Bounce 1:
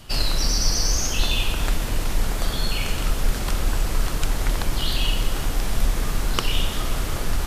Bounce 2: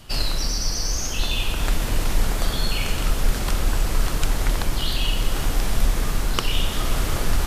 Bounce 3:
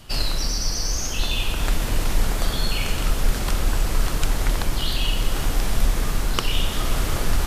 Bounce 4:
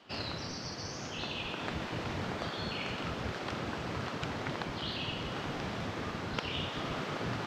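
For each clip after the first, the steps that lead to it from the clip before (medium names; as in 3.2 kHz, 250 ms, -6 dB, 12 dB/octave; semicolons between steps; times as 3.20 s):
gain riding 0.5 s
no audible change
spectral gate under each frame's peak -15 dB weak; distance through air 200 m; trim -5.5 dB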